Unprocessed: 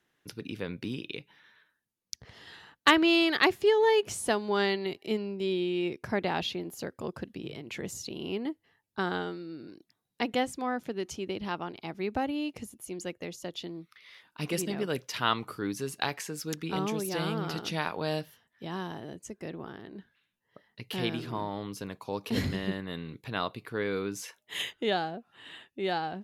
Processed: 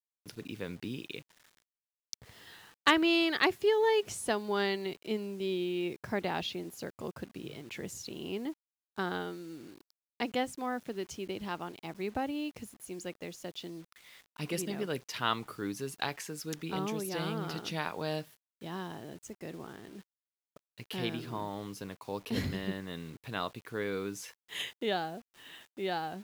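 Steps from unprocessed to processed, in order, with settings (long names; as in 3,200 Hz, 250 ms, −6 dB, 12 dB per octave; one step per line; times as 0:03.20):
bit reduction 9 bits
level −3.5 dB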